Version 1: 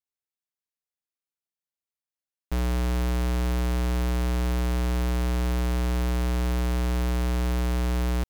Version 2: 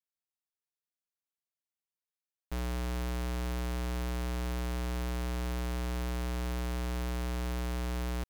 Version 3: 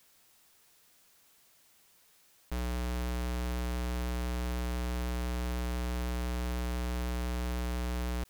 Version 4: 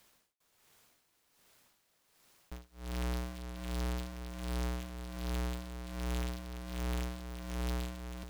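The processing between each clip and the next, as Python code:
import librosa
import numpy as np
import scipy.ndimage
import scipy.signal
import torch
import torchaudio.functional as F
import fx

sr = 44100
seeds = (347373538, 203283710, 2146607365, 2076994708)

y1 = fx.low_shelf(x, sr, hz=430.0, db=-3.5)
y1 = y1 * librosa.db_to_amplitude(-6.0)
y2 = fx.env_flatten(y1, sr, amount_pct=50)
y3 = y2 * (1.0 - 0.99 / 2.0 + 0.99 / 2.0 * np.cos(2.0 * np.pi * 1.3 * (np.arange(len(y2)) / sr)))
y3 = y3 + 10.0 ** (-8.5 / 20.0) * np.pad(y3, (int(404 * sr / 1000.0), 0))[:len(y3)]
y3 = fx.noise_mod_delay(y3, sr, seeds[0], noise_hz=2100.0, depth_ms=0.09)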